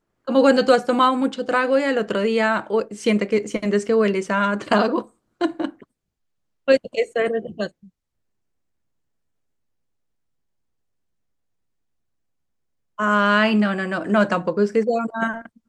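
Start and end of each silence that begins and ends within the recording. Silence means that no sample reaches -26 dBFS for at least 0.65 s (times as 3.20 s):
5.69–6.68 s
7.67–12.99 s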